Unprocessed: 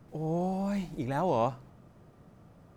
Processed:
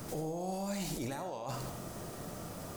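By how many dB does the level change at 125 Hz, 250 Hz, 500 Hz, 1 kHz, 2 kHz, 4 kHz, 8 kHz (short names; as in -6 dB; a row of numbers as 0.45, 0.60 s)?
-6.0 dB, -6.5 dB, -7.0 dB, -8.0 dB, -2.5 dB, +5.0 dB, n/a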